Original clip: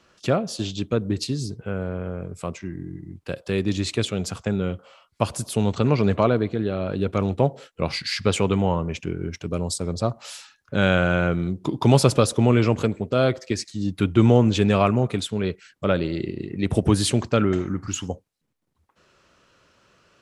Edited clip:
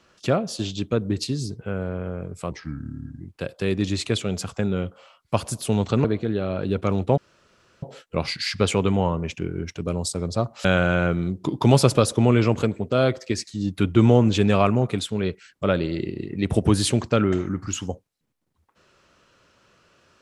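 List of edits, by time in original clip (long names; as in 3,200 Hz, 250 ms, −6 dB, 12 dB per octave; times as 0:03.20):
0:02.51–0:03.08: play speed 82%
0:05.92–0:06.35: remove
0:07.48: splice in room tone 0.65 s
0:10.30–0:10.85: remove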